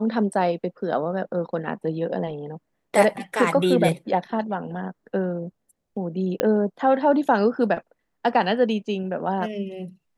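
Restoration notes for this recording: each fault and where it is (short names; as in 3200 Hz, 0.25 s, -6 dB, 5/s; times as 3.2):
6.4 pop -6 dBFS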